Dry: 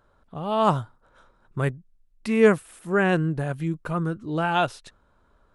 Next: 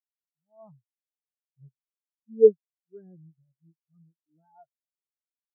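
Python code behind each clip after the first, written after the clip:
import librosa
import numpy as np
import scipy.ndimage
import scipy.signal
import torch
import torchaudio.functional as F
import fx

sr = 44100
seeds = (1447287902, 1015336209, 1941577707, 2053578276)

y = fx.peak_eq(x, sr, hz=3600.0, db=-5.5, octaves=1.8)
y = fx.spectral_expand(y, sr, expansion=4.0)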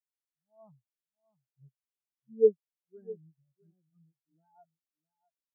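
y = x + 10.0 ** (-19.5 / 20.0) * np.pad(x, (int(656 * sr / 1000.0), 0))[:len(x)]
y = F.gain(torch.from_numpy(y), -6.0).numpy()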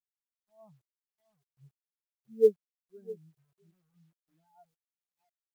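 y = fx.quant_companded(x, sr, bits=8)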